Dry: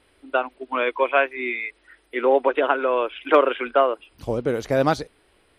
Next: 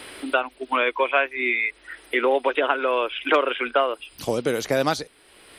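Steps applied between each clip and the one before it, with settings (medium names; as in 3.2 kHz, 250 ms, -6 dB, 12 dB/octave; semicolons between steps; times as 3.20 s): treble shelf 2.3 kHz +11.5 dB; three bands compressed up and down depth 70%; trim -3 dB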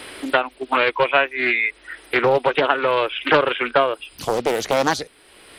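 loudspeaker Doppler distortion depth 0.47 ms; trim +3.5 dB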